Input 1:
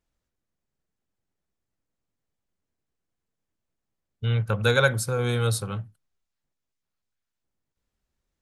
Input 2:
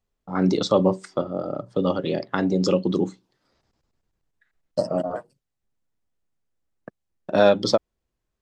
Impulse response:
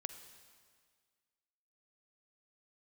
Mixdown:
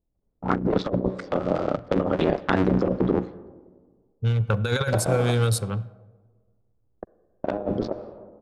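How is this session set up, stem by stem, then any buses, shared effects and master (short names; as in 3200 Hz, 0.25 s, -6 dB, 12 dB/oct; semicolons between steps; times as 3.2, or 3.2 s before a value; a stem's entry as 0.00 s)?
-1.0 dB, 0.00 s, send -6 dB, Wiener smoothing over 25 samples
+0.5 dB, 0.15 s, send -3.5 dB, cycle switcher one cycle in 3, muted; treble ducked by the level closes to 620 Hz, closed at -17 dBFS; auto duck -16 dB, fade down 1.90 s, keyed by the first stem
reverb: on, RT60 1.8 s, pre-delay 41 ms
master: low-pass opened by the level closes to 620 Hz, open at -19 dBFS; negative-ratio compressor -21 dBFS, ratio -0.5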